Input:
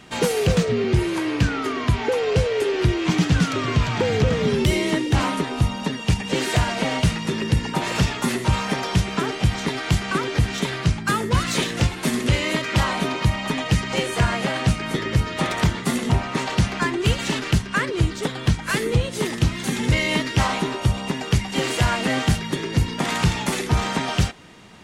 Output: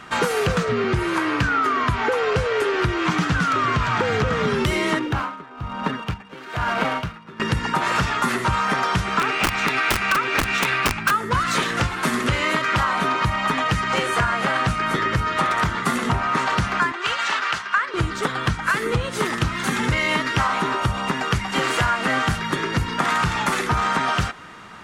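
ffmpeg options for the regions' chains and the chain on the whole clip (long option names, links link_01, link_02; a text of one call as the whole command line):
ffmpeg -i in.wav -filter_complex "[0:a]asettb=1/sr,asplit=3[link_01][link_02][link_03];[link_01]atrim=end=4.994[link_04];[link_02]atrim=start=4.99:end=7.4,asetpts=PTS-STARTPTS,afade=type=in:duration=0.004:curve=qsin,afade=type=out:start_time=2.406:duration=0.004:curve=qsin,bandreject=frequency=1900:width=16,adynamicsmooth=sensitivity=3:basefreq=1900,aeval=exprs='val(0)*pow(10,-19*(0.5-0.5*cos(2*PI*1.1*n/s))/20)':channel_layout=same[link_05];[link_03]atrim=start=7.396[link_06];[link_04][link_05]acrossfade=duration=0.004:curve1=hsin:curve2=qsin[link_07];[link_07][link_06]acrossfade=duration=0.004:curve1=qsin:curve2=hsin,asettb=1/sr,asplit=3[link_08][link_09][link_10];[link_08]atrim=end=9.194[link_11];[link_09]atrim=start=9.19:end=11.11,asetpts=PTS-STARTPTS,afade=type=in:duration=0.004:curve=qsin,afade=type=out:start_time=1.916:duration=0.004:curve=qsin,equalizer=frequency=2600:width=2.6:gain=12.5,bandreject=frequency=3100:width=12,aeval=exprs='(mod(3.76*val(0)+1,2)-1)/3.76':channel_layout=same[link_12];[link_10]atrim=start=11.106[link_13];[link_11][link_12]acrossfade=duration=0.004:curve1=hsin:curve2=qsin[link_14];[link_14][link_13]acrossfade=duration=0.004:curve1=qsin:curve2=hsin,asettb=1/sr,asplit=3[link_15][link_16][link_17];[link_15]atrim=end=16.924[link_18];[link_16]atrim=start=16.92:end=17.94,asetpts=PTS-STARTPTS,afade=type=in:duration=0.004:curve=qsin,afade=type=out:start_time=1.016:duration=0.004:curve=qsin,highpass=frequency=250:poles=1,acrossover=split=570 7300:gain=0.158 1 0.178[link_19][link_20][link_21];[link_19][link_20][link_21]amix=inputs=3:normalize=0[link_22];[link_17]atrim=start=17.936[link_23];[link_18][link_22]acrossfade=duration=0.004:curve1=hsin:curve2=qsin[link_24];[link_24][link_23]acrossfade=duration=0.004:curve1=qsin:curve2=hsin,equalizer=frequency=1300:width_type=o:width=1.1:gain=14,acompressor=threshold=-17dB:ratio=6" out.wav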